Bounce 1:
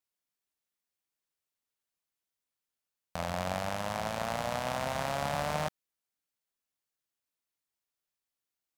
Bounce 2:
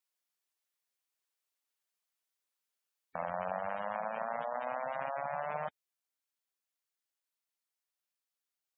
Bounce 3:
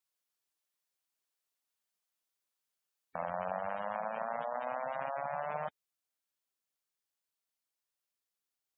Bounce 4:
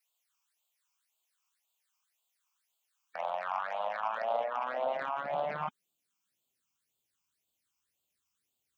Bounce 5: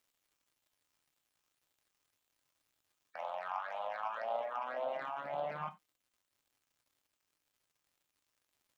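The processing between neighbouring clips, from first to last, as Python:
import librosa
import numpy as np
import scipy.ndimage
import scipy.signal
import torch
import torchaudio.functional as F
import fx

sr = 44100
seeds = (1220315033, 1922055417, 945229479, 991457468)

y1 = fx.highpass(x, sr, hz=490.0, slope=6)
y1 = fx.spec_gate(y1, sr, threshold_db=-15, keep='strong')
y1 = fx.rider(y1, sr, range_db=10, speed_s=0.5)
y2 = fx.peak_eq(y1, sr, hz=2100.0, db=-2.0, octaves=0.77)
y3 = fx.cheby_harmonics(y2, sr, harmonics=(5,), levels_db=(-22,), full_scale_db=-22.5)
y3 = fx.phaser_stages(y3, sr, stages=8, low_hz=520.0, high_hz=1800.0, hz=1.9, feedback_pct=25)
y3 = fx.filter_sweep_highpass(y3, sr, from_hz=850.0, to_hz=64.0, start_s=3.73, end_s=7.32, q=1.4)
y3 = y3 * librosa.db_to_amplitude(6.0)
y4 = fx.dmg_crackle(y3, sr, seeds[0], per_s=200.0, level_db=-58.0)
y4 = fx.rev_gated(y4, sr, seeds[1], gate_ms=110, shape='falling', drr_db=7.5)
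y4 = y4 * librosa.db_to_amplitude(-6.0)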